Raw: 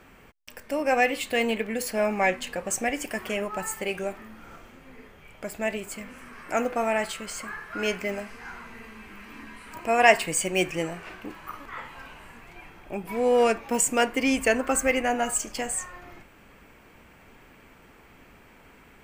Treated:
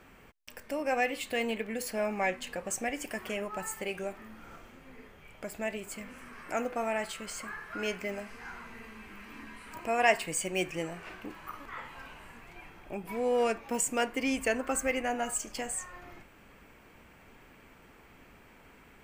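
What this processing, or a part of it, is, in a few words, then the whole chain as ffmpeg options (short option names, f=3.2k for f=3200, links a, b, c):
parallel compression: -filter_complex "[0:a]asplit=2[a][b];[b]acompressor=threshold=-35dB:ratio=6,volume=-3dB[c];[a][c]amix=inputs=2:normalize=0,volume=-8dB"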